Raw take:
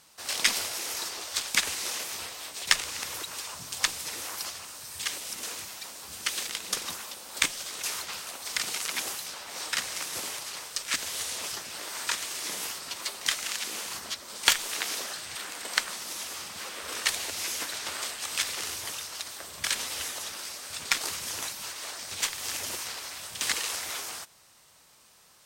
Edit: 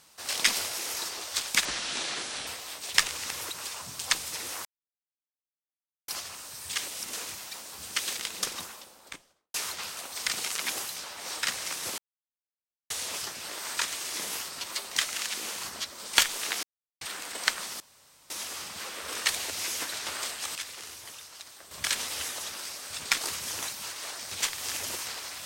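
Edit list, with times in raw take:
0:01.65–0:02.20: play speed 67%
0:04.38: splice in silence 1.43 s
0:06.66–0:07.84: fade out and dull
0:10.28–0:11.20: silence
0:14.93–0:15.31: silence
0:16.10: splice in room tone 0.50 s
0:18.35–0:19.51: clip gain −8.5 dB

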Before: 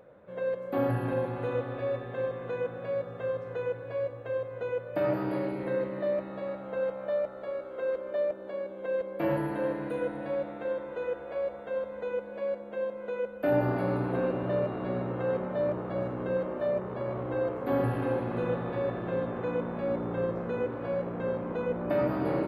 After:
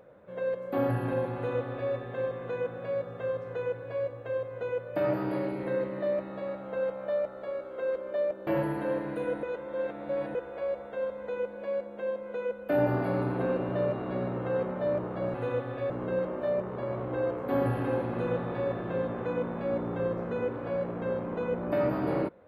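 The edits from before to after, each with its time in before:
0:01.35–0:01.91: duplicate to 0:16.08
0:08.47–0:09.21: remove
0:10.17–0:11.09: reverse

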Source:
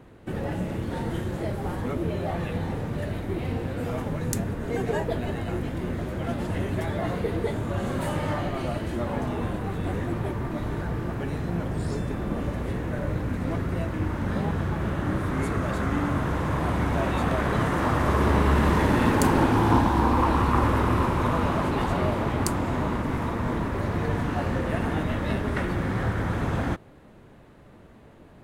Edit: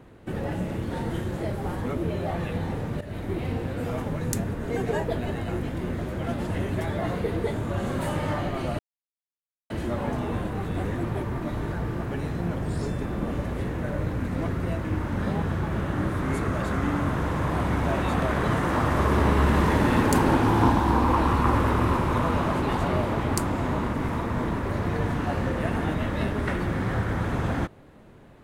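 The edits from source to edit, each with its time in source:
0:03.01–0:03.32: fade in equal-power, from −14 dB
0:08.79: splice in silence 0.91 s

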